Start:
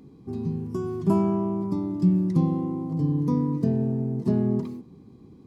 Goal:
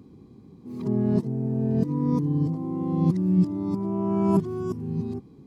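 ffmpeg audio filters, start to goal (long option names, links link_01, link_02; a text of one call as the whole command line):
ffmpeg -i in.wav -af "areverse" out.wav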